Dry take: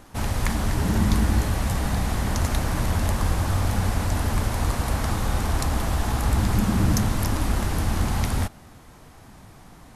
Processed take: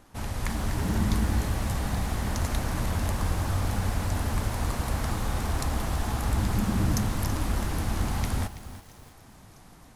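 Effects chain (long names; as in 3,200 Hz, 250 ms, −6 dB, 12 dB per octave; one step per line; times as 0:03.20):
automatic gain control gain up to 3 dB
on a send: delay with a high-pass on its return 649 ms, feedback 81%, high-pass 3,600 Hz, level −23.5 dB
on the sum: feedback echo at a low word length 329 ms, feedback 35%, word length 6 bits, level −13.5 dB
level −7.5 dB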